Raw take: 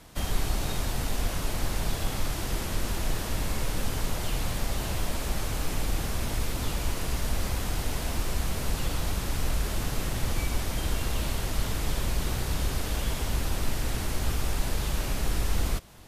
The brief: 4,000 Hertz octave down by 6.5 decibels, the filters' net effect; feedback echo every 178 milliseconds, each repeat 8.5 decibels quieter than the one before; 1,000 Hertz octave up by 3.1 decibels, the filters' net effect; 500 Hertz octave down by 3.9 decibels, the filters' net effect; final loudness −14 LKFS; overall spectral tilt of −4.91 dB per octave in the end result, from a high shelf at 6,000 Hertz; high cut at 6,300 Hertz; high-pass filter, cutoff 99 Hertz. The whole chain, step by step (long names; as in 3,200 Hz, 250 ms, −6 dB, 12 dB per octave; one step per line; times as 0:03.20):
high-pass filter 99 Hz
low-pass filter 6,300 Hz
parametric band 500 Hz −7 dB
parametric band 1,000 Hz +6.5 dB
parametric band 4,000 Hz −6 dB
high-shelf EQ 6,000 Hz −6 dB
repeating echo 178 ms, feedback 38%, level −8.5 dB
level +21 dB